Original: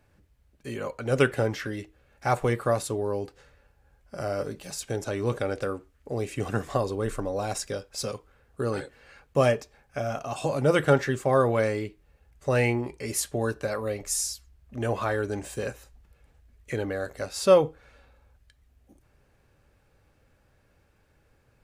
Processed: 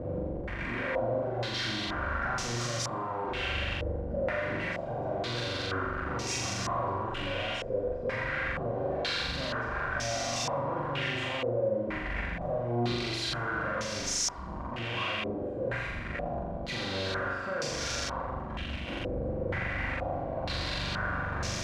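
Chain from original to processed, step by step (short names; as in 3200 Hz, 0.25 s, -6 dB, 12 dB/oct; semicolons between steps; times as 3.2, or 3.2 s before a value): infinite clipping; notch comb 430 Hz; flutter echo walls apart 7.2 m, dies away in 1.2 s; stepped low-pass 2.1 Hz 490–5800 Hz; gain -8 dB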